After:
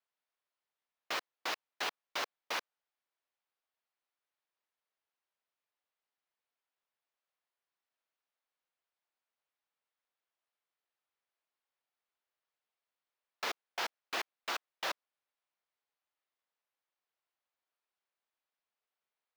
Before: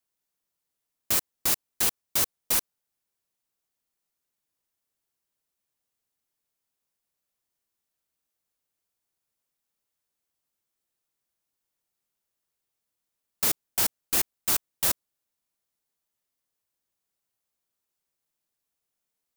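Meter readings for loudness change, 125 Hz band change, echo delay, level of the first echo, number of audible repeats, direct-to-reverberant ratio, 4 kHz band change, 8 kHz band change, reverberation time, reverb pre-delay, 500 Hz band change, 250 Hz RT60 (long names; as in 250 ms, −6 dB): −13.5 dB, below −20 dB, no echo audible, no echo audible, no echo audible, no reverb audible, −7.0 dB, −21.5 dB, no reverb audible, no reverb audible, −4.5 dB, no reverb audible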